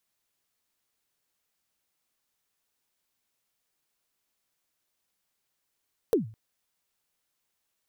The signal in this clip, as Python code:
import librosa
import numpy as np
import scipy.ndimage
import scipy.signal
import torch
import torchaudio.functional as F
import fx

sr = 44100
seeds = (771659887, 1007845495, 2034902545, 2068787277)

y = fx.drum_kick(sr, seeds[0], length_s=0.21, level_db=-16, start_hz=500.0, end_hz=110.0, sweep_ms=129.0, decay_s=0.39, click=True)